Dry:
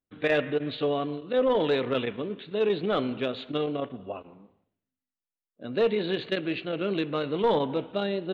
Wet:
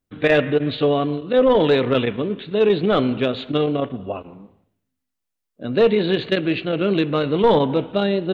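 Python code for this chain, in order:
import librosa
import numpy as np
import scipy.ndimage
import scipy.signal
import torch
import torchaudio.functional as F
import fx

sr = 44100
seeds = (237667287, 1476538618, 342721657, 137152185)

y = fx.low_shelf(x, sr, hz=170.0, db=7.5)
y = y * librosa.db_to_amplitude(7.5)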